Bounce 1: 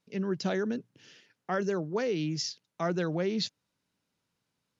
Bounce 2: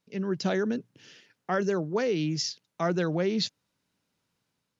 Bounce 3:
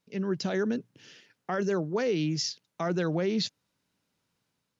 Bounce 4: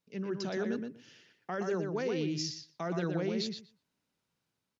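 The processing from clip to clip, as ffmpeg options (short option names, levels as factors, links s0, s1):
-af "dynaudnorm=f=120:g=5:m=1.41"
-af "alimiter=limit=0.106:level=0:latency=1:release=24"
-filter_complex "[0:a]asplit=2[s0][s1];[s1]adelay=120,lowpass=f=3900:p=1,volume=0.596,asplit=2[s2][s3];[s3]adelay=120,lowpass=f=3900:p=1,volume=0.15,asplit=2[s4][s5];[s5]adelay=120,lowpass=f=3900:p=1,volume=0.15[s6];[s0][s2][s4][s6]amix=inputs=4:normalize=0,volume=0.501"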